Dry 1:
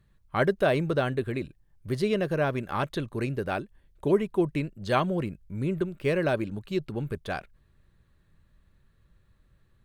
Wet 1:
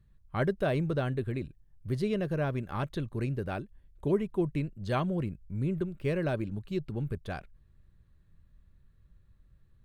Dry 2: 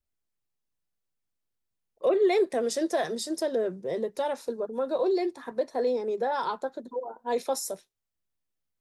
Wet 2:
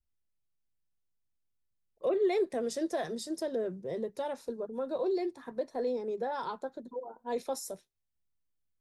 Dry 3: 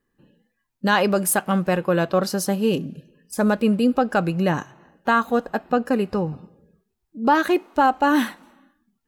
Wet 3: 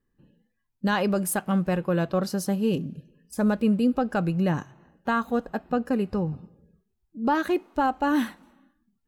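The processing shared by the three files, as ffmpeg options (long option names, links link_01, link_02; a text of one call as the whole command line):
ffmpeg -i in.wav -af "lowshelf=frequency=200:gain=11,volume=-7.5dB" out.wav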